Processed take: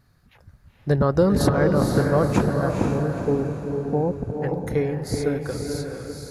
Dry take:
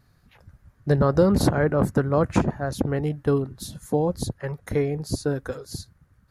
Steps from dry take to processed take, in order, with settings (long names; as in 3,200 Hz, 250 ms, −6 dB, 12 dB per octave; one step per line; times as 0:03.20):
0:02.69–0:04.42: Chebyshev low-pass filter 1,000 Hz, order 10
on a send: feedback delay with all-pass diffusion 478 ms, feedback 44%, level −3.5 dB